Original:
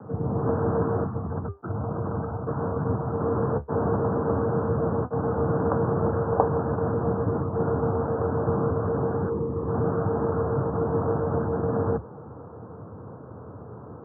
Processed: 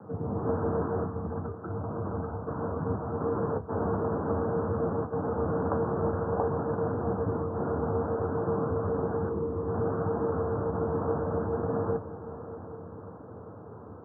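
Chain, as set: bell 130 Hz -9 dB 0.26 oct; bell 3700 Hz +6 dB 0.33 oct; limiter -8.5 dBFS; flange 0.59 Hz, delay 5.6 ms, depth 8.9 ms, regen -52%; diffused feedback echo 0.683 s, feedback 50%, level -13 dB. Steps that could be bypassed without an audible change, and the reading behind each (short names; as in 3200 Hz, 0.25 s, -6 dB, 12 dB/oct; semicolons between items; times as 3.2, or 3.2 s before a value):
bell 3700 Hz: input band ends at 1500 Hz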